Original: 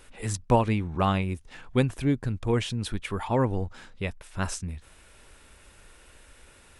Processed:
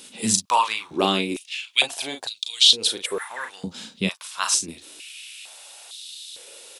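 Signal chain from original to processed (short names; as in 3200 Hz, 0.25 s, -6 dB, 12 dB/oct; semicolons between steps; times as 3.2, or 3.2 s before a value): resonant high shelf 2500 Hz +12 dB, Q 1.5; early reflections 36 ms -7 dB, 47 ms -13.5 dB; spectral repair 3.08–3.45, 2100–7500 Hz after; stepped high-pass 2.2 Hz 210–3800 Hz; gain +1.5 dB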